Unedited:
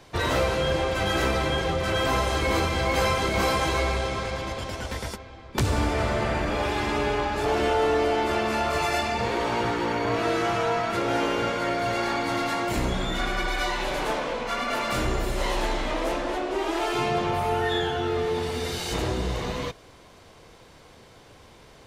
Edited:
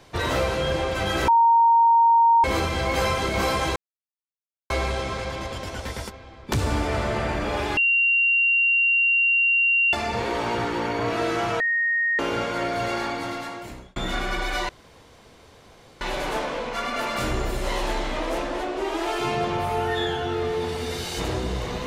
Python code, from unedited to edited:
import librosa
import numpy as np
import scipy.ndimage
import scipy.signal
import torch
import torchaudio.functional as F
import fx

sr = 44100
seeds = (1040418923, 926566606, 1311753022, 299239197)

y = fx.edit(x, sr, fx.bleep(start_s=1.28, length_s=1.16, hz=926.0, db=-13.0),
    fx.insert_silence(at_s=3.76, length_s=0.94),
    fx.bleep(start_s=6.83, length_s=2.16, hz=2760.0, db=-16.5),
    fx.bleep(start_s=10.66, length_s=0.59, hz=1860.0, db=-19.5),
    fx.fade_out_span(start_s=11.97, length_s=1.05),
    fx.insert_room_tone(at_s=13.75, length_s=1.32), tone=tone)